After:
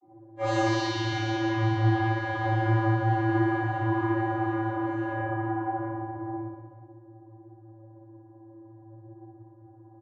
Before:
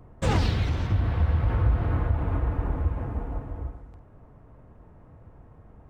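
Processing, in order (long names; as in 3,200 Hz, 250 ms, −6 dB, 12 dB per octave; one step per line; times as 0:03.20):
notch filter 580 Hz, Q 14
low-pass that shuts in the quiet parts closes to 350 Hz, open at −18.5 dBFS
bass and treble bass −13 dB, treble +12 dB
comb filter 4.3 ms, depth 98%
downward compressor 6 to 1, threshold −32 dBFS, peak gain reduction 11 dB
time stretch by phase vocoder 1.7×
channel vocoder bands 32, square 111 Hz
flutter between parallel walls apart 10.3 metres, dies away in 0.9 s
rectangular room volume 250 cubic metres, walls mixed, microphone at 3.8 metres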